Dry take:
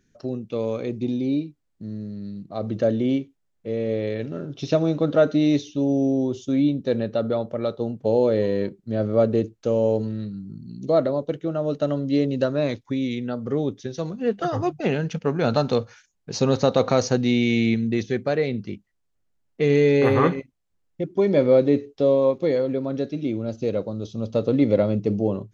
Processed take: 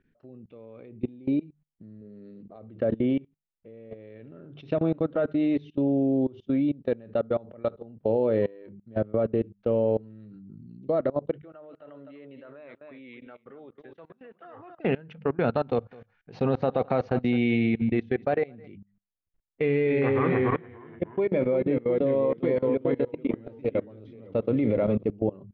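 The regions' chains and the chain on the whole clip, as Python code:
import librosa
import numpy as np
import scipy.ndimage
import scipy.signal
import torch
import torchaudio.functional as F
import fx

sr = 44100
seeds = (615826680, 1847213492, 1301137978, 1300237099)

y = fx.chain(x, sr, fx.highpass(hz=160.0, slope=6),
    fx.peak_eq(hz=450.0, db=10.0, octaves=0.44), at=(2.01, 2.56))
y = fx.chain(y, sr, fx.bandpass_q(hz=2300.0, q=0.75),
    fx.high_shelf(hz=2200.0, db=-10.0),
    fx.echo_single(ms=249, db=-11.0), at=(11.38, 14.79))
y = fx.chain(y, sr, fx.peak_eq(hz=740.0, db=7.5, octaves=0.23),
    fx.echo_single(ms=212, db=-15.5), at=(15.68, 18.68))
y = fx.chain(y, sr, fx.peak_eq(hz=2300.0, db=4.5, octaves=0.32),
    fx.echo_pitch(ms=257, semitones=-1, count=3, db_per_echo=-6.0), at=(19.61, 25.03))
y = scipy.signal.sosfilt(scipy.signal.butter(4, 2800.0, 'lowpass', fs=sr, output='sos'), y)
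y = fx.hum_notches(y, sr, base_hz=50, count=4)
y = fx.level_steps(y, sr, step_db=23)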